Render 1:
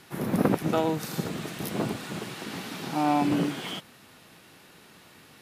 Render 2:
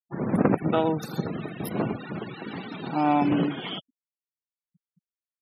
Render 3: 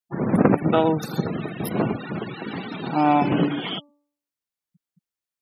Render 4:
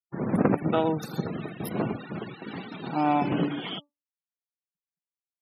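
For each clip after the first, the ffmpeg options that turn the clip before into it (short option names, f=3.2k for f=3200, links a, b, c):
-af "afftfilt=real='re*gte(hypot(re,im),0.0178)':imag='im*gte(hypot(re,im),0.0178)':win_size=1024:overlap=0.75,volume=2dB"
-af "bandreject=f=290.4:t=h:w=4,bandreject=f=580.8:t=h:w=4,bandreject=f=871.2:t=h:w=4,bandreject=f=1.1616k:t=h:w=4,volume=4.5dB"
-af "agate=range=-33dB:threshold=-30dB:ratio=3:detection=peak,volume=-5.5dB"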